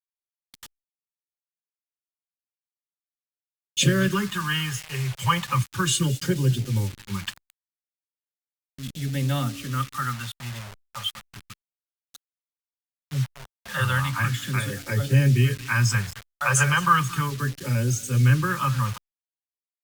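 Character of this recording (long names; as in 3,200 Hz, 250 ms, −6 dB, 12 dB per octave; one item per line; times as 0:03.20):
a quantiser's noise floor 6 bits, dither none
phaser sweep stages 2, 0.35 Hz, lowest notch 270–1,100 Hz
Opus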